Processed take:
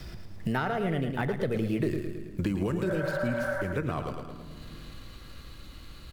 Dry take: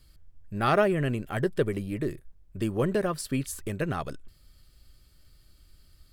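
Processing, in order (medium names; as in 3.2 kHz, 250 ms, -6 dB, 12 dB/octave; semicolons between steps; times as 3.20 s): median filter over 5 samples; Doppler pass-by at 1.90 s, 35 m/s, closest 6.5 m; spectral replace 2.89–3.59 s, 540–2200 Hz before; in parallel at +3 dB: compressor with a negative ratio -42 dBFS; on the sum: vibrato 5.9 Hz 11 cents; feedback delay 109 ms, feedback 38%, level -8 dB; on a send at -14 dB: reverberation RT60 1.1 s, pre-delay 7 ms; on the sum: three bands compressed up and down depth 100%; trim +3 dB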